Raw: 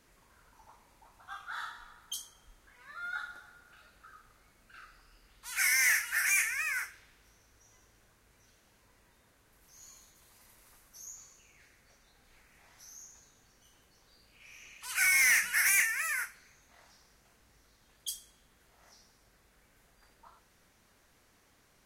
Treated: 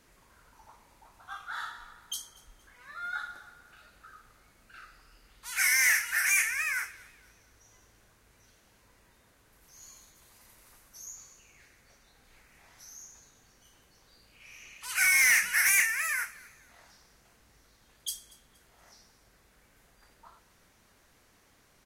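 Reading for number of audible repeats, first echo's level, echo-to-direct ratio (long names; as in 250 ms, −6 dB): 2, −22.0 dB, −21.5 dB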